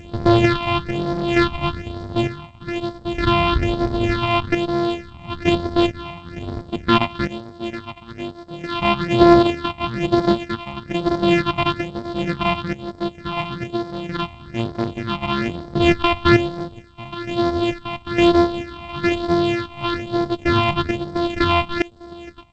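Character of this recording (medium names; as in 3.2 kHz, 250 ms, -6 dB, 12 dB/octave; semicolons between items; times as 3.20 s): a buzz of ramps at a fixed pitch in blocks of 128 samples; random-step tremolo 2.2 Hz, depth 95%; phasing stages 6, 1.1 Hz, lowest notch 420–2600 Hz; G.722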